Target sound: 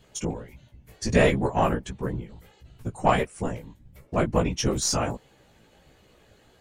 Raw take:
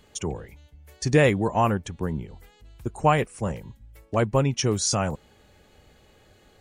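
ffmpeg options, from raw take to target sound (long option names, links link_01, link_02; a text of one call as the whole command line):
ffmpeg -i in.wav -af "afftfilt=real='hypot(re,im)*cos(2*PI*random(0))':imag='hypot(re,im)*sin(2*PI*random(1))':win_size=512:overlap=0.75,flanger=delay=15:depth=3.3:speed=1.5,aeval=exprs='0.188*(cos(1*acos(clip(val(0)/0.188,-1,1)))-cos(1*PI/2))+0.0075*(cos(6*acos(clip(val(0)/0.188,-1,1)))-cos(6*PI/2))':channel_layout=same,volume=8dB" out.wav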